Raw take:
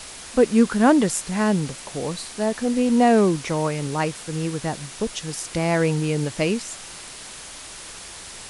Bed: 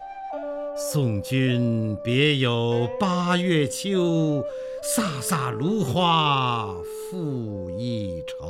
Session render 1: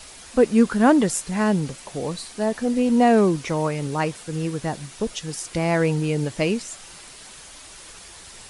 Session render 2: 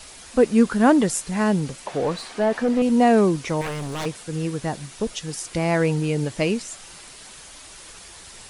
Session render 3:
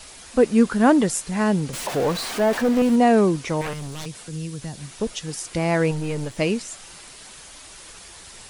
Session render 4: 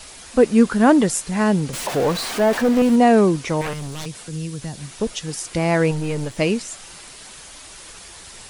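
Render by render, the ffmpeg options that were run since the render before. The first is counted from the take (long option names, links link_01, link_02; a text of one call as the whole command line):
ffmpeg -i in.wav -af "afftdn=noise_reduction=6:noise_floor=-39" out.wav
ffmpeg -i in.wav -filter_complex "[0:a]asettb=1/sr,asplit=3[link_01][link_02][link_03];[link_01]atrim=end=1.864[link_04];[link_02]atrim=start=1.86:end=2.82,asetpts=PTS-STARTPTS,afade=type=in:duration=0.004:curve=qsin,afade=type=out:start_time=0.956:duration=0.004:curve=qsin,asplit=2[link_05][link_06];[link_06]highpass=frequency=720:poles=1,volume=18dB,asoftclip=type=tanh:threshold=-10.5dB[link_07];[link_05][link_07]amix=inputs=2:normalize=0,lowpass=frequency=1200:poles=1,volume=-6dB[link_08];[link_03]atrim=start=2.816[link_09];[link_04][link_08]acrossfade=duration=0.004:curve1=hsin:curve2=qsin[link_10];[link_10][link_09]acrossfade=duration=0.004:curve1=qsin:curve2=hsin,asettb=1/sr,asplit=3[link_11][link_12][link_13];[link_11]atrim=end=3.614[link_14];[link_12]atrim=start=3.61:end=4.06,asetpts=PTS-STARTPTS,afade=type=in:duration=0.004:curve=qsin,afade=type=out:start_time=0.446:duration=0.004:curve=qsin,aeval=exprs='0.0708*(abs(mod(val(0)/0.0708+3,4)-2)-1)':channel_layout=same[link_15];[link_13]atrim=start=4.056[link_16];[link_14][link_15]acrossfade=duration=0.004:curve1=hsin:curve2=qsin[link_17];[link_17][link_16]acrossfade=duration=0.004:curve1=qsin:curve2=hsin" out.wav
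ffmpeg -i in.wav -filter_complex "[0:a]asettb=1/sr,asplit=3[link_01][link_02][link_03];[link_01]atrim=end=1.734[link_04];[link_02]atrim=start=1.73:end=2.96,asetpts=PTS-STARTPTS,afade=type=in:duration=0.004:curve=qsin,afade=type=out:start_time=1.226:duration=0.004:curve=qsin,aeval=exprs='val(0)+0.5*0.0422*sgn(val(0))':channel_layout=same[link_05];[link_03]atrim=start=2.956[link_06];[link_04][link_05]acrossfade=duration=0.004:curve1=hsin:curve2=qsin[link_07];[link_07][link_06]acrossfade=duration=0.004:curve1=qsin:curve2=hsin,asettb=1/sr,asplit=3[link_08][link_09][link_10];[link_08]atrim=end=3.734[link_11];[link_09]atrim=start=3.73:end=4.91,asetpts=PTS-STARTPTS,afade=type=in:duration=0.004:curve=qsin,afade=type=out:start_time=1.176:duration=0.004:curve=qsin,acrossover=split=180|3000[link_12][link_13][link_14];[link_13]acompressor=threshold=-37dB:ratio=6:attack=3.2:release=140:knee=2.83:detection=peak[link_15];[link_12][link_15][link_14]amix=inputs=3:normalize=0[link_16];[link_10]atrim=start=4.906[link_17];[link_11][link_16]acrossfade=duration=0.004:curve1=hsin:curve2=qsin[link_18];[link_18][link_17]acrossfade=duration=0.004:curve1=qsin:curve2=hsin,asettb=1/sr,asplit=3[link_19][link_20][link_21];[link_19]atrim=end=5.914[link_22];[link_20]atrim=start=5.91:end=6.38,asetpts=PTS-STARTPTS,afade=type=in:duration=0.004:curve=qsin,afade=type=out:start_time=0.466:duration=0.004:curve=qsin,aeval=exprs='if(lt(val(0),0),0.447*val(0),val(0))':channel_layout=same[link_23];[link_21]atrim=start=6.376[link_24];[link_22][link_23]acrossfade=duration=0.004:curve1=hsin:curve2=qsin[link_25];[link_25][link_24]acrossfade=duration=0.004:curve1=qsin:curve2=hsin" out.wav
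ffmpeg -i in.wav -af "volume=2.5dB,alimiter=limit=-3dB:level=0:latency=1" out.wav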